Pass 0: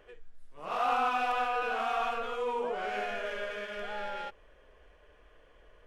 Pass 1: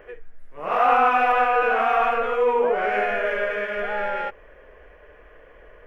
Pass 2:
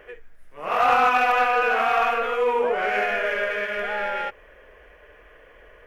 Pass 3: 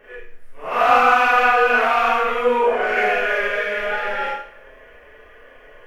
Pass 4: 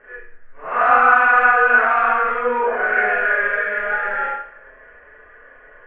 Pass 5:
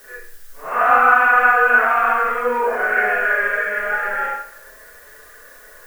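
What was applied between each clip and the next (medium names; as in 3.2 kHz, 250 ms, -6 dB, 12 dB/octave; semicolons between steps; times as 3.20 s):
graphic EQ 500/2000/4000/8000 Hz +5/+8/-11/-11 dB; trim +8.5 dB
treble shelf 2.3 kHz +10.5 dB; Chebyshev shaper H 2 -16 dB, 8 -32 dB, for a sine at -4 dBFS; trim -2.5 dB
chorus voices 4, 0.46 Hz, delay 12 ms, depth 4.7 ms; Schroeder reverb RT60 0.54 s, combs from 26 ms, DRR -6.5 dB
resonant low-pass 1.6 kHz, resonance Q 3; trim -4 dB
added noise blue -48 dBFS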